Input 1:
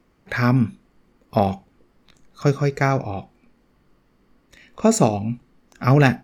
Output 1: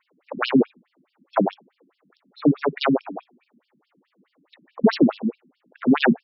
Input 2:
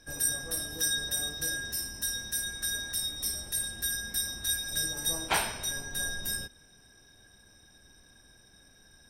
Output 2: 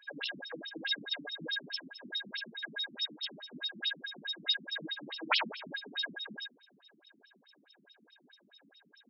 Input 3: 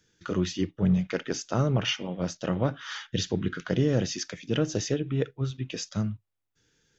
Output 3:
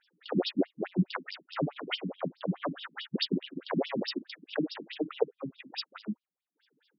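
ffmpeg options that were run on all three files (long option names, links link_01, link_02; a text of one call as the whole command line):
ffmpeg -i in.wav -af "aeval=exprs='0.891*(cos(1*acos(clip(val(0)/0.891,-1,1)))-cos(1*PI/2))+0.178*(cos(8*acos(clip(val(0)/0.891,-1,1)))-cos(8*PI/2))':channel_layout=same,afftfilt=real='re*between(b*sr/1024,210*pow(4000/210,0.5+0.5*sin(2*PI*4.7*pts/sr))/1.41,210*pow(4000/210,0.5+0.5*sin(2*PI*4.7*pts/sr))*1.41)':imag='im*between(b*sr/1024,210*pow(4000/210,0.5+0.5*sin(2*PI*4.7*pts/sr))/1.41,210*pow(4000/210,0.5+0.5*sin(2*PI*4.7*pts/sr))*1.41)':win_size=1024:overlap=0.75,volume=5.5dB" out.wav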